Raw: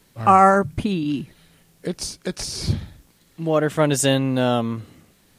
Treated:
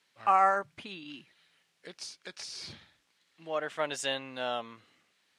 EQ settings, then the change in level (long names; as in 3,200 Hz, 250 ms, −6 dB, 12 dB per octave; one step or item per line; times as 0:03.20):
low-pass filter 2,600 Hz 12 dB per octave
first difference
dynamic equaliser 680 Hz, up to +5 dB, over −47 dBFS, Q 1.1
+4.0 dB